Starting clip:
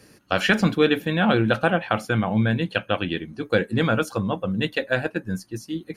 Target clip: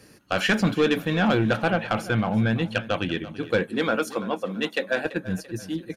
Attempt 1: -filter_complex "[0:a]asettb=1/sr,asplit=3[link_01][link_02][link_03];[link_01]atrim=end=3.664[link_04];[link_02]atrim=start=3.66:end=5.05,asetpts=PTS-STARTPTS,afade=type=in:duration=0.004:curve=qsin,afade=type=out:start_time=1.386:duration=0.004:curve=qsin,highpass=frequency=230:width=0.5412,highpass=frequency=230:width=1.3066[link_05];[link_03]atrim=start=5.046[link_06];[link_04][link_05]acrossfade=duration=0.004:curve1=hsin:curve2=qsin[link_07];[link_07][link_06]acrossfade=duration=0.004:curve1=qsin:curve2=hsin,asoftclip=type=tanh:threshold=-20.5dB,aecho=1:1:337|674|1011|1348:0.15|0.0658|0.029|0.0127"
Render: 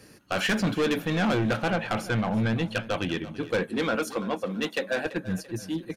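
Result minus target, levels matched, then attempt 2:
soft clipping: distortion +7 dB
-filter_complex "[0:a]asettb=1/sr,asplit=3[link_01][link_02][link_03];[link_01]atrim=end=3.664[link_04];[link_02]atrim=start=3.66:end=5.05,asetpts=PTS-STARTPTS,afade=type=in:duration=0.004:curve=qsin,afade=type=out:start_time=1.386:duration=0.004:curve=qsin,highpass=frequency=230:width=0.5412,highpass=frequency=230:width=1.3066[link_05];[link_03]atrim=start=5.046[link_06];[link_04][link_05]acrossfade=duration=0.004:curve1=hsin:curve2=qsin[link_07];[link_07][link_06]acrossfade=duration=0.004:curve1=qsin:curve2=hsin,asoftclip=type=tanh:threshold=-13dB,aecho=1:1:337|674|1011|1348:0.15|0.0658|0.029|0.0127"

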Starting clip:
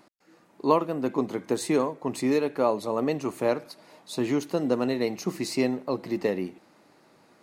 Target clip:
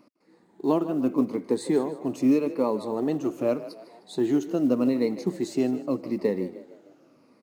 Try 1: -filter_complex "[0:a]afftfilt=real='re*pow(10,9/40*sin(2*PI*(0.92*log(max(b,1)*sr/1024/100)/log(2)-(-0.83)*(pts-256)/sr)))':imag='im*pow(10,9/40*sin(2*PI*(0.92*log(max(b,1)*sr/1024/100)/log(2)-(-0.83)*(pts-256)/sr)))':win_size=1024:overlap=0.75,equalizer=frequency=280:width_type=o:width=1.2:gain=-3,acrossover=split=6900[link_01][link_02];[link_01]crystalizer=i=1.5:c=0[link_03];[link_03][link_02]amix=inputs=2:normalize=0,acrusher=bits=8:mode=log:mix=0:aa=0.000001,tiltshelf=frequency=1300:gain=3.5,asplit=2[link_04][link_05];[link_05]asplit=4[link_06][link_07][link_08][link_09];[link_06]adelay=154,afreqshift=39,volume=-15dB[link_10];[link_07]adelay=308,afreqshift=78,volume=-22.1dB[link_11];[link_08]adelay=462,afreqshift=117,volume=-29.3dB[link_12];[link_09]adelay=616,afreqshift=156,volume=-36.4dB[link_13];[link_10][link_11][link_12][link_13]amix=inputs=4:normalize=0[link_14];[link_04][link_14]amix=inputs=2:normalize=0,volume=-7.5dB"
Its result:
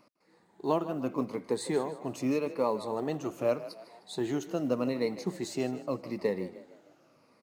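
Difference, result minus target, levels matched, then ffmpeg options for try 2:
250 Hz band −2.5 dB
-filter_complex "[0:a]afftfilt=real='re*pow(10,9/40*sin(2*PI*(0.92*log(max(b,1)*sr/1024/100)/log(2)-(-0.83)*(pts-256)/sr)))':imag='im*pow(10,9/40*sin(2*PI*(0.92*log(max(b,1)*sr/1024/100)/log(2)-(-0.83)*(pts-256)/sr)))':win_size=1024:overlap=0.75,equalizer=frequency=280:width_type=o:width=1.2:gain=7,acrossover=split=6900[link_01][link_02];[link_01]crystalizer=i=1.5:c=0[link_03];[link_03][link_02]amix=inputs=2:normalize=0,acrusher=bits=8:mode=log:mix=0:aa=0.000001,tiltshelf=frequency=1300:gain=3.5,asplit=2[link_04][link_05];[link_05]asplit=4[link_06][link_07][link_08][link_09];[link_06]adelay=154,afreqshift=39,volume=-15dB[link_10];[link_07]adelay=308,afreqshift=78,volume=-22.1dB[link_11];[link_08]adelay=462,afreqshift=117,volume=-29.3dB[link_12];[link_09]adelay=616,afreqshift=156,volume=-36.4dB[link_13];[link_10][link_11][link_12][link_13]amix=inputs=4:normalize=0[link_14];[link_04][link_14]amix=inputs=2:normalize=0,volume=-7.5dB"

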